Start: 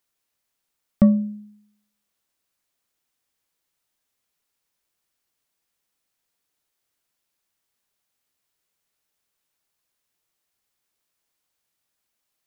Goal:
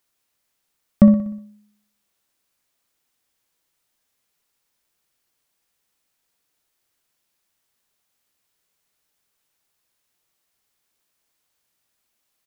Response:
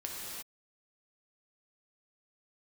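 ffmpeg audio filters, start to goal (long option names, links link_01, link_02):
-af "aecho=1:1:61|122|183|244|305|366:0.266|0.138|0.0719|0.0374|0.0195|0.0101,volume=4dB"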